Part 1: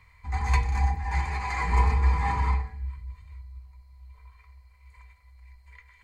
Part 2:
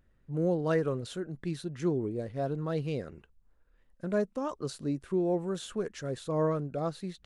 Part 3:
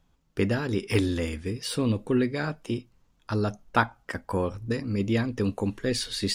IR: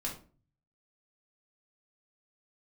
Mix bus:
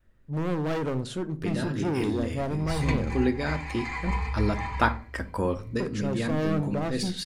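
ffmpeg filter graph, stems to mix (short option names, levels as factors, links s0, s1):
-filter_complex "[0:a]equalizer=f=2900:t=o:w=1.5:g=8.5,adelay=2350,volume=0.398[s0];[1:a]adynamicequalizer=threshold=0.00708:dfrequency=200:dqfactor=0.91:tfrequency=200:tqfactor=0.91:attack=5:release=100:ratio=0.375:range=3:mode=boostabove:tftype=bell,volume=29.9,asoftclip=hard,volume=0.0335,volume=1.26,asplit=3[s1][s2][s3];[s1]atrim=end=4.11,asetpts=PTS-STARTPTS,afade=t=out:st=4.106:d=0.004:c=hsin[s4];[s2]atrim=start=4.11:end=5.8,asetpts=PTS-STARTPTS,volume=0[s5];[s3]atrim=start=5.8,asetpts=PTS-STARTPTS,afade=t=in:d=0.004:c=hsin[s6];[s4][s5][s6]concat=n=3:v=0:a=1,asplit=3[s7][s8][s9];[s8]volume=0.316[s10];[2:a]adelay=1050,volume=0.75,asplit=2[s11][s12];[s12]volume=0.376[s13];[s9]apad=whole_len=326315[s14];[s11][s14]sidechaincompress=threshold=0.00708:ratio=8:attack=6.6:release=124[s15];[3:a]atrim=start_sample=2205[s16];[s10][s13]amix=inputs=2:normalize=0[s17];[s17][s16]afir=irnorm=-1:irlink=0[s18];[s0][s7][s15][s18]amix=inputs=4:normalize=0"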